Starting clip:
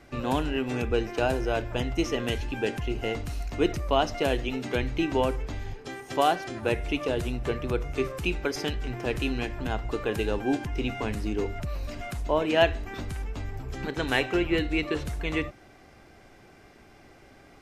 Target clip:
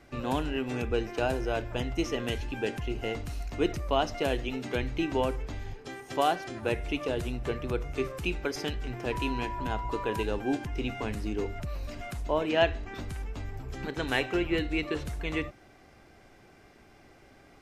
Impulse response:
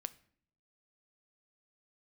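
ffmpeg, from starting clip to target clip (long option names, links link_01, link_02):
-filter_complex "[0:a]asettb=1/sr,asplit=3[link_01][link_02][link_03];[link_01]atrim=end=9.124[link_04];[link_02]atrim=start=9.12:end=10.23,asetpts=PTS-STARTPTS,afade=type=in:duration=0.004:curve=qsin,afade=type=out:start_time=1.106:duration=0.004:curve=qsin,aeval=exprs='val(0)+0.0251*sin(2*PI*980*n/s)':channel_layout=same[link_05];[link_03]atrim=start=10.226[link_06];[link_04][link_05]acrossfade=duration=0.004:curve1=hsin:curve2=qsin[link_07];[link_07][link_06]acrossfade=duration=0.004:curve1=qsin:curve2=hsin,asettb=1/sr,asplit=3[link_08][link_09][link_10];[link_08]atrim=end=12.494[link_11];[link_09]atrim=start=12.49:end=12.95,asetpts=PTS-STARTPTS,afade=type=in:duration=0.004:curve=qsin,afade=type=out:start_time=0.456:duration=0.004:curve=qsin,lowpass=6900[link_12];[link_10]atrim=start=12.946[link_13];[link_11][link_12]acrossfade=duration=0.004:curve1=hsin:curve2=qsin[link_14];[link_14][link_13]acrossfade=duration=0.004:curve1=qsin:curve2=hsin,volume=-3dB"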